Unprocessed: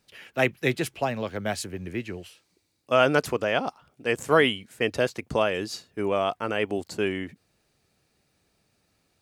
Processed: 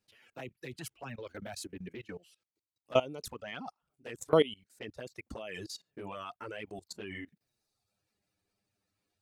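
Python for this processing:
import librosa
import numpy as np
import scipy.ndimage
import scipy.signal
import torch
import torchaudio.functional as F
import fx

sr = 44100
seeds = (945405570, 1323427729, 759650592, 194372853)

y = fx.dereverb_blind(x, sr, rt60_s=0.95)
y = fx.env_flanger(y, sr, rest_ms=10.0, full_db=-19.0)
y = fx.level_steps(y, sr, step_db=21)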